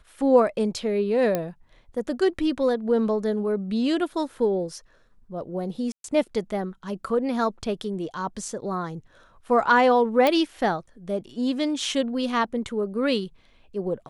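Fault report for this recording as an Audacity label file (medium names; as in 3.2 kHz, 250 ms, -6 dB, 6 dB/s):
1.350000	1.350000	pop -11 dBFS
5.920000	6.040000	dropout 122 ms
10.270000	10.270000	pop -8 dBFS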